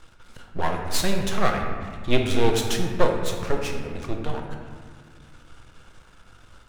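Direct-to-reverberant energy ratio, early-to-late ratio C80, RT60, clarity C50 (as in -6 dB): 1.5 dB, 5.5 dB, 1.8 s, 4.0 dB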